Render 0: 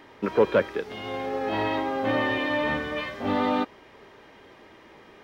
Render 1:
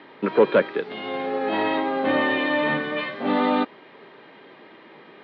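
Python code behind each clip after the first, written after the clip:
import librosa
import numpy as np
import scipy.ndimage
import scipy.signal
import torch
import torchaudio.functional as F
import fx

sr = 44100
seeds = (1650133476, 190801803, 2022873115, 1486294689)

y = scipy.signal.sosfilt(scipy.signal.cheby1(4, 1.0, [140.0, 4200.0], 'bandpass', fs=sr, output='sos'), x)
y = y * librosa.db_to_amplitude(4.0)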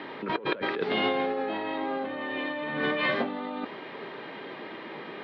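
y = fx.over_compress(x, sr, threshold_db=-31.0, ratio=-1.0)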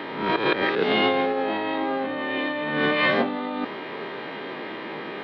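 y = fx.spec_swells(x, sr, rise_s=0.6)
y = y * librosa.db_to_amplitude(4.5)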